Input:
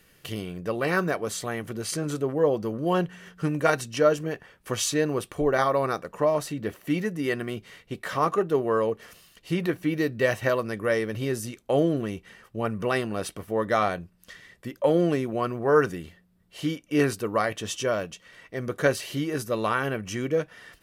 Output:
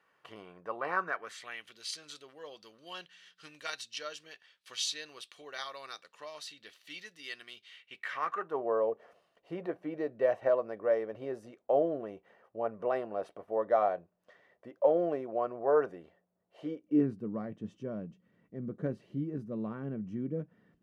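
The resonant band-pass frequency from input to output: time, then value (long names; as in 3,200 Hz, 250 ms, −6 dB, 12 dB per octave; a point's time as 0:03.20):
resonant band-pass, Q 2.4
0:00.93 1,000 Hz
0:01.77 3,900 Hz
0:07.54 3,900 Hz
0:08.35 1,600 Hz
0:08.65 650 Hz
0:16.61 650 Hz
0:17.08 200 Hz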